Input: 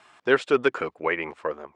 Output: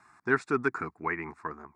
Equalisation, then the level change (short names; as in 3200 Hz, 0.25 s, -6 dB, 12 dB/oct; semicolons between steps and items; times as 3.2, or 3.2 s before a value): low shelf 430 Hz +6.5 dB; fixed phaser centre 1300 Hz, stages 4; -3.0 dB